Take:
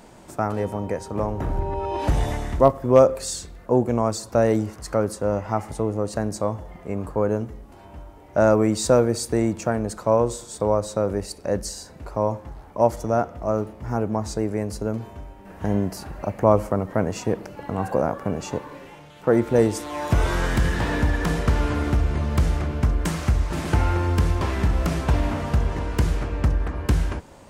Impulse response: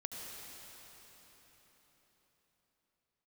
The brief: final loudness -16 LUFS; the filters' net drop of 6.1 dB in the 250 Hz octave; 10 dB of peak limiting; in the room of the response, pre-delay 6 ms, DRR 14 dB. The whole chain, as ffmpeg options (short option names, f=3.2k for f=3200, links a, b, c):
-filter_complex "[0:a]equalizer=f=250:t=o:g=-8.5,alimiter=limit=-14.5dB:level=0:latency=1,asplit=2[a][b];[1:a]atrim=start_sample=2205,adelay=6[c];[b][c]afir=irnorm=-1:irlink=0,volume=-13.5dB[d];[a][d]amix=inputs=2:normalize=0,volume=11.5dB"